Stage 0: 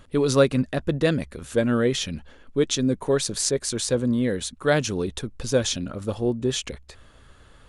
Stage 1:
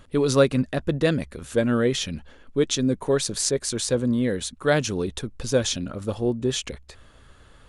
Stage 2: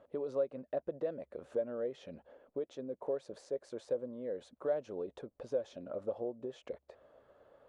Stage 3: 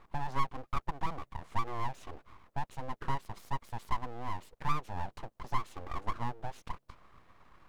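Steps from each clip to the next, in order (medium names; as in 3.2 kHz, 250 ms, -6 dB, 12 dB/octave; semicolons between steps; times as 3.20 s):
no audible change
compression 12:1, threshold -28 dBFS, peak gain reduction 16.5 dB; band-pass filter 580 Hz, Q 3.6; trim +3 dB
full-wave rectifier; trim +5.5 dB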